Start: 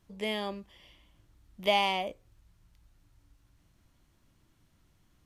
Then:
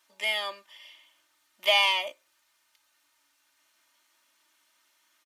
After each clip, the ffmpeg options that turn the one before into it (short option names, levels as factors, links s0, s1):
-af "highpass=1100,aecho=1:1:3.3:0.84,volume=2"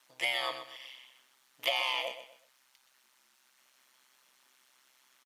-af "acompressor=threshold=0.0355:ratio=12,aeval=exprs='val(0)*sin(2*PI*65*n/s)':c=same,aecho=1:1:124|248|372:0.282|0.0874|0.0271,volume=1.68"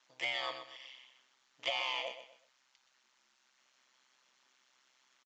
-filter_complex "[0:a]asplit=2[s0][s1];[s1]volume=26.6,asoftclip=hard,volume=0.0376,volume=0.562[s2];[s0][s2]amix=inputs=2:normalize=0,aresample=16000,aresample=44100,volume=0.422"